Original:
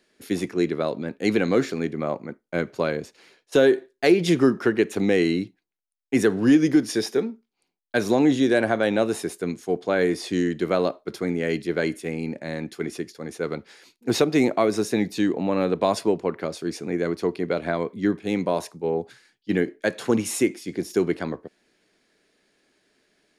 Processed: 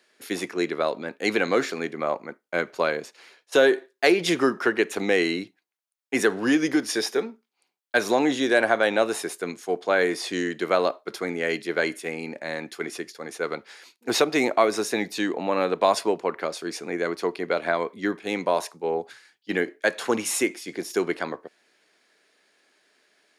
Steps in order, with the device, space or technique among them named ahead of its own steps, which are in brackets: filter by subtraction (in parallel: low-pass 1 kHz 12 dB/octave + polarity flip); on the sum: trim +2.5 dB

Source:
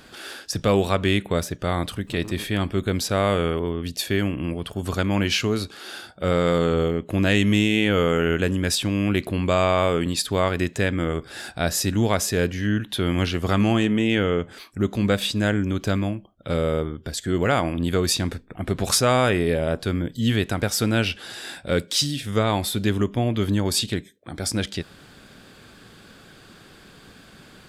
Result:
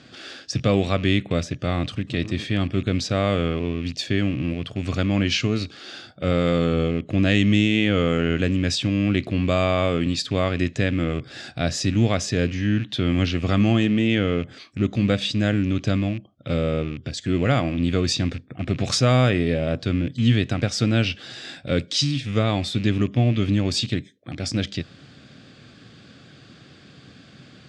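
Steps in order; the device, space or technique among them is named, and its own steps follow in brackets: car door speaker with a rattle (rattle on loud lows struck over -31 dBFS, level -28 dBFS; cabinet simulation 83–6500 Hz, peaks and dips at 86 Hz +4 dB, 130 Hz +9 dB, 270 Hz +4 dB, 410 Hz -4 dB, 930 Hz -10 dB, 1.5 kHz -4 dB)

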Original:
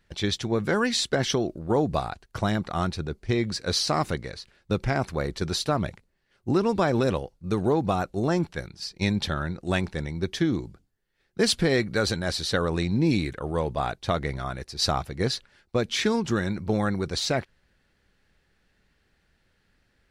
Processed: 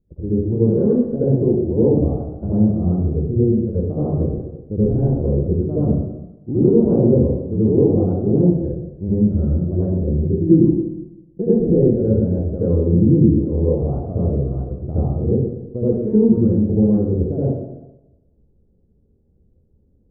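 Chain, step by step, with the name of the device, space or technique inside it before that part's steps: next room (low-pass 450 Hz 24 dB/octave; reverberation RT60 1.0 s, pre-delay 67 ms, DRR -11 dB); 10.49–11.62 s: comb 5.9 ms, depth 68%

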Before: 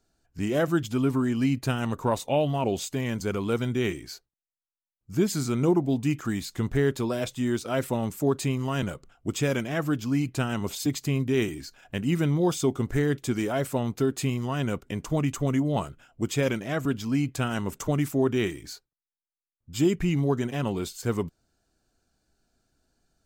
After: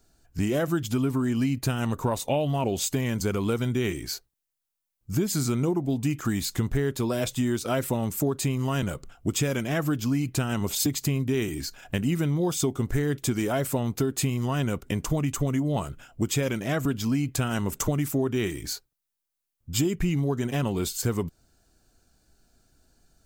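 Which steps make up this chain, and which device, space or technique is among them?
ASMR close-microphone chain (bass shelf 110 Hz +5.5 dB; compression 5:1, threshold -28 dBFS, peak gain reduction 11 dB; treble shelf 7.9 kHz +8 dB); trim +5.5 dB

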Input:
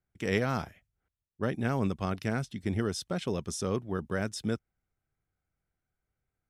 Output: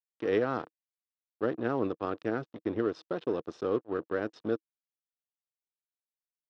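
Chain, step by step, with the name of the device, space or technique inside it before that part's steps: blown loudspeaker (crossover distortion -40.5 dBFS; cabinet simulation 170–3800 Hz, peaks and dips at 190 Hz -8 dB, 320 Hz +8 dB, 470 Hz +7 dB, 1.2 kHz +3 dB, 2.2 kHz -10 dB, 3.2 kHz -4 dB)

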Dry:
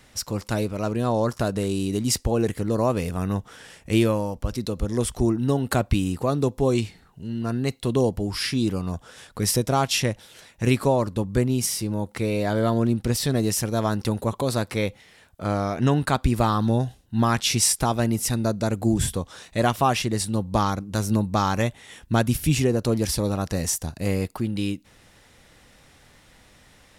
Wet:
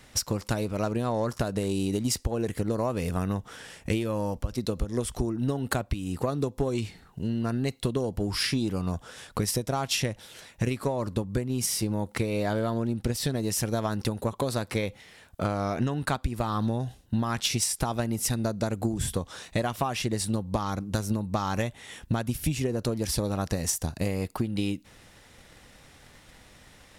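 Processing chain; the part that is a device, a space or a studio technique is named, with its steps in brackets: drum-bus smash (transient shaper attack +8 dB, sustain +1 dB; compression 12:1, threshold -22 dBFS, peak gain reduction 15.5 dB; saturation -15 dBFS, distortion -20 dB)

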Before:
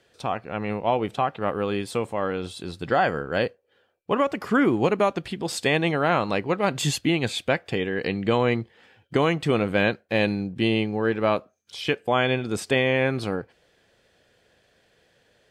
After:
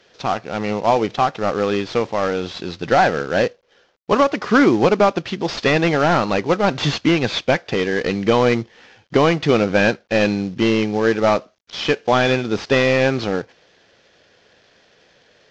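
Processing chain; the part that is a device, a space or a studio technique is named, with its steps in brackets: early wireless headset (high-pass 160 Hz 6 dB/octave; CVSD coder 32 kbps); trim +8 dB

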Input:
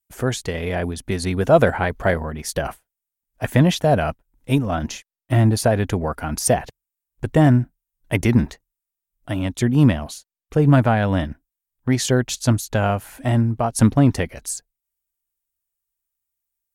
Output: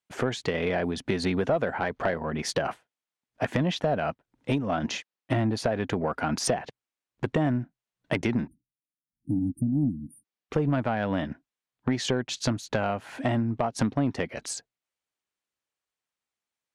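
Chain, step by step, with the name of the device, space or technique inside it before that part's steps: 9.39–9.83 s: peaking EQ 200 Hz -4.5 dB 1.1 oct; 8.47–10.24 s: spectral selection erased 340–8700 Hz; AM radio (band-pass 160–4200 Hz; compression 6:1, threshold -28 dBFS, peak gain reduction 18.5 dB; saturation -19 dBFS, distortion -21 dB); trim +5.5 dB

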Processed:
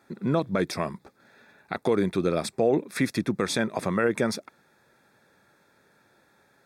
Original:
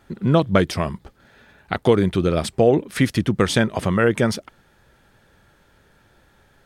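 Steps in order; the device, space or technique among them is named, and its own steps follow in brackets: PA system with an anti-feedback notch (high-pass 180 Hz 12 dB/octave; Butterworth band-stop 3 kHz, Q 4.4; peak limiter -8.5 dBFS, peak gain reduction 6.5 dB); trim -4 dB

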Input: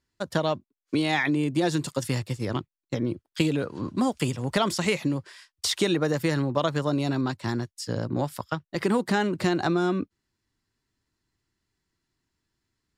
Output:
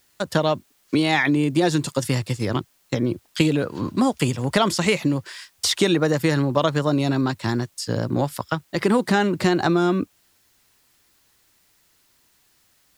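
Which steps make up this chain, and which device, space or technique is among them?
noise-reduction cassette on a plain deck (tape noise reduction on one side only encoder only; wow and flutter 29 cents; white noise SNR 40 dB); trim +5 dB

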